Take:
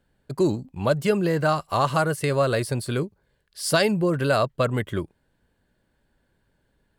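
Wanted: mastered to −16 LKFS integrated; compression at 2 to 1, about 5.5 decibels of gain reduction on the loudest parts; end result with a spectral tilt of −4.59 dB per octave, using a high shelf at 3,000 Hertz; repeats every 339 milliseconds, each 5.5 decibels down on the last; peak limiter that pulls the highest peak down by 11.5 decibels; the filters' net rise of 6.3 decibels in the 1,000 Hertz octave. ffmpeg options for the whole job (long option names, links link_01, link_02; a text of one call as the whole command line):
ffmpeg -i in.wav -af "equalizer=frequency=1000:width_type=o:gain=7,highshelf=frequency=3000:gain=8,acompressor=threshold=-22dB:ratio=2,alimiter=limit=-19dB:level=0:latency=1,aecho=1:1:339|678|1017|1356|1695|2034|2373:0.531|0.281|0.149|0.079|0.0419|0.0222|0.0118,volume=12dB" out.wav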